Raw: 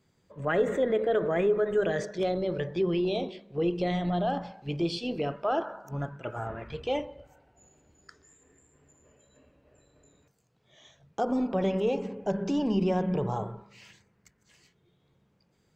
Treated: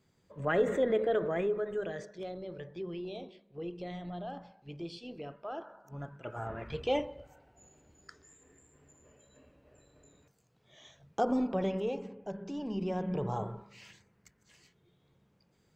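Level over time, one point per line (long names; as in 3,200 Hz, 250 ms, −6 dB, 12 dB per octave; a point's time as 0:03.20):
0:01.00 −2 dB
0:02.17 −12.5 dB
0:05.70 −12.5 dB
0:06.72 0 dB
0:11.20 0 dB
0:12.44 −12 dB
0:13.55 −1 dB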